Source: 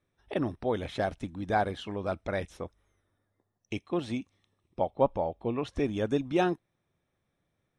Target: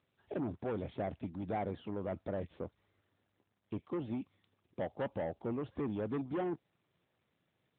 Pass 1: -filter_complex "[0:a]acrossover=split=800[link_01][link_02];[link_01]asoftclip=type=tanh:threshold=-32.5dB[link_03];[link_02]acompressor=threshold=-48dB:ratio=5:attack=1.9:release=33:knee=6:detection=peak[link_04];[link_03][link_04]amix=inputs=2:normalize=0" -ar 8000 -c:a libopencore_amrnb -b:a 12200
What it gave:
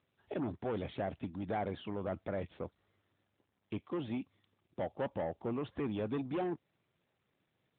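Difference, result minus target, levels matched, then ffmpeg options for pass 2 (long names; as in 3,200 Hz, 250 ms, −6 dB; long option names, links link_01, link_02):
downward compressor: peak gain reduction −7 dB
-filter_complex "[0:a]acrossover=split=800[link_01][link_02];[link_01]asoftclip=type=tanh:threshold=-32.5dB[link_03];[link_02]acompressor=threshold=-57dB:ratio=5:attack=1.9:release=33:knee=6:detection=peak[link_04];[link_03][link_04]amix=inputs=2:normalize=0" -ar 8000 -c:a libopencore_amrnb -b:a 12200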